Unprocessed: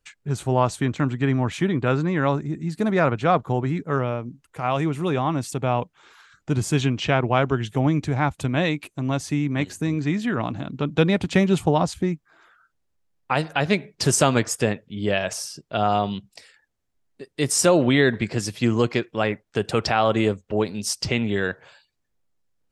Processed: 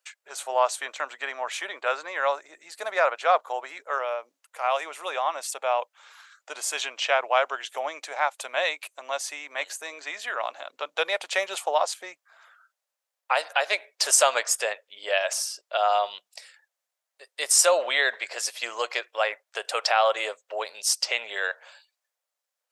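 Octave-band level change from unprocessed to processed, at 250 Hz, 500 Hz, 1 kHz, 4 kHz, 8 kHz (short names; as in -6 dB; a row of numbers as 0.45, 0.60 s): -31.5, -4.0, -0.5, +1.5, +3.0 dB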